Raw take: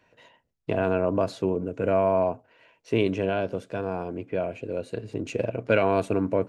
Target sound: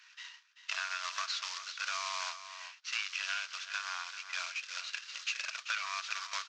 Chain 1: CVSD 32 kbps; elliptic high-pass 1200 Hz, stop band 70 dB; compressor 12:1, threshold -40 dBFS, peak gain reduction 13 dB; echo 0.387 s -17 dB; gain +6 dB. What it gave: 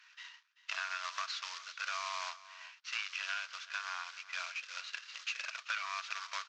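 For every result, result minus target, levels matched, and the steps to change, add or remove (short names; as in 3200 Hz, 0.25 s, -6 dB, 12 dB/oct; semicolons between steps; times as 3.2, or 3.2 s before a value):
echo-to-direct -6 dB; 8000 Hz band -3.5 dB
change: echo 0.387 s -11 dB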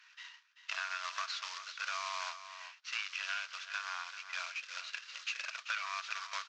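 8000 Hz band -3.5 dB
add after compressor: high shelf 4100 Hz +8 dB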